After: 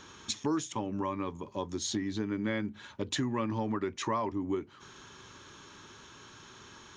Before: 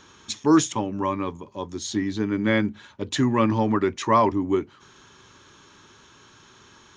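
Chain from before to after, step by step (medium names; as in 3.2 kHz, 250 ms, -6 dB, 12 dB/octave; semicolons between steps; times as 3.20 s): compression 4:1, threshold -31 dBFS, peak gain reduction 15.5 dB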